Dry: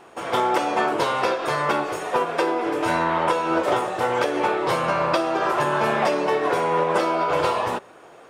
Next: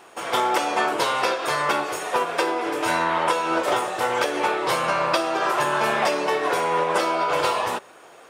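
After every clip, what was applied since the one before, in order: tilt +2 dB/oct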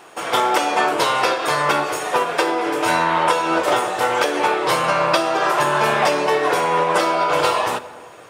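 shoebox room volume 3200 m³, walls mixed, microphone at 0.47 m; gain +4 dB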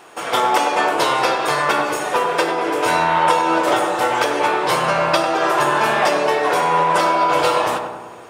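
darkening echo 98 ms, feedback 62%, low-pass 1600 Hz, level -5 dB

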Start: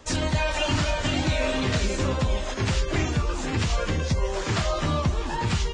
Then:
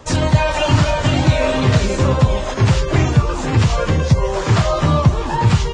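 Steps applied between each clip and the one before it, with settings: graphic EQ 125/500/1000 Hz +11/+4/+5 dB; gain +4.5 dB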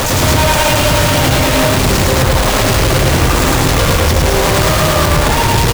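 infinite clipping; loudspeakers at several distances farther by 36 m -1 dB, 75 m -2 dB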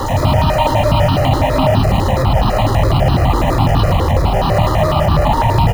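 reverb RT60 0.60 s, pre-delay 3 ms, DRR 18.5 dB; step phaser 12 Hz 670–2100 Hz; gain -10.5 dB

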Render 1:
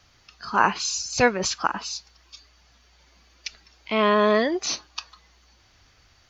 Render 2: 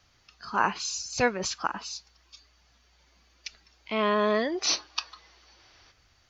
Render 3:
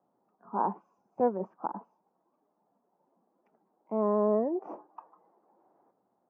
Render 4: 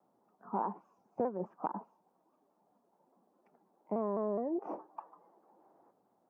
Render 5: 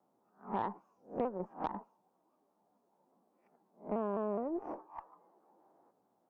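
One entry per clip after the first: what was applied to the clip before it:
spectral gain 4.58–5.91, 300–6100 Hz +8 dB; gain -5.5 dB
elliptic band-pass 190–900 Hz, stop band 60 dB
compressor 6:1, threshold -32 dBFS, peak gain reduction 11 dB; shaped vibrato saw down 4.8 Hz, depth 100 cents; gain +1.5 dB
spectral swells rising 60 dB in 0.30 s; added harmonics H 6 -26 dB, 7 -34 dB, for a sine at -18 dBFS; gain -2 dB

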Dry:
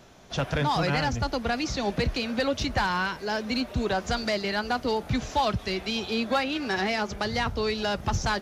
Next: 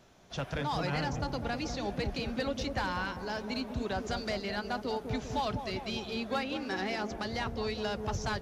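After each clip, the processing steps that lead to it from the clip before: dark delay 0.2 s, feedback 62%, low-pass 730 Hz, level -5 dB; gain -8 dB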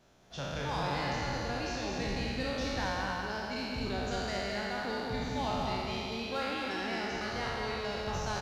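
spectral trails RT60 2.52 s; echo 0.216 s -5 dB; gain -6.5 dB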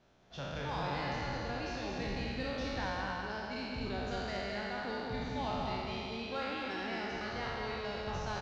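LPF 4800 Hz 12 dB/oct; gain -3 dB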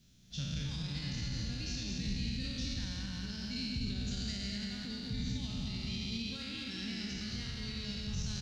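limiter -31.5 dBFS, peak gain reduction 6.5 dB; EQ curve 210 Hz 0 dB, 400 Hz -18 dB, 840 Hz -28 dB, 3700 Hz 0 dB, 8600 Hz +8 dB; gain +7 dB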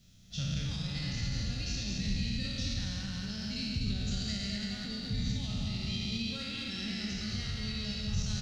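reverb RT60 0.50 s, pre-delay 5 ms, DRR 9.5 dB; gain +2.5 dB

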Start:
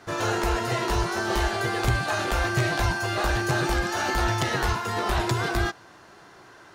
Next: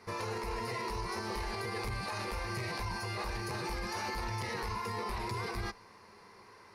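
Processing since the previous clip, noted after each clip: ripple EQ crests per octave 0.88, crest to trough 11 dB; limiter -21 dBFS, peak gain reduction 11 dB; gain -7.5 dB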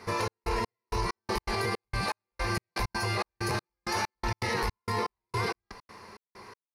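step gate "xxx..xx...xx..x." 163 bpm -60 dB; gain +8 dB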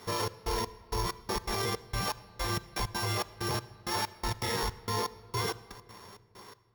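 sample sorter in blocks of 8 samples; shoebox room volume 3000 m³, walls mixed, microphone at 0.4 m; gain -2 dB

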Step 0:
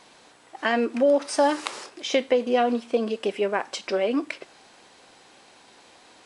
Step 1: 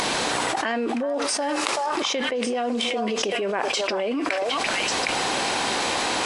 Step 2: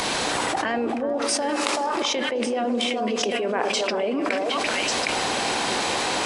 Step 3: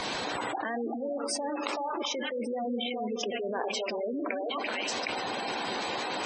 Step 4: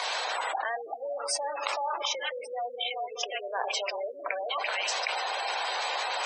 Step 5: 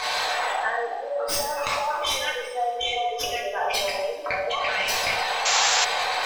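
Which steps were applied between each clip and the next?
upward compressor, threshold -34 dBFS; delay with a stepping band-pass 0.381 s, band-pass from 950 Hz, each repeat 1.4 oct, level -2.5 dB; fast leveller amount 100%; gain -8.5 dB
on a send: analogue delay 0.21 s, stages 1024, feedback 73%, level -8 dB; on the sum: three-band expander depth 40%
spectral gate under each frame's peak -15 dB strong; gain -7.5 dB
inverse Chebyshev high-pass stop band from 220 Hz, stop band 50 dB; gain +3 dB
tracing distortion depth 0.06 ms; two-slope reverb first 0.73 s, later 3.4 s, from -20 dB, DRR -5 dB; painted sound noise, 5.45–5.85, 800–7600 Hz -22 dBFS

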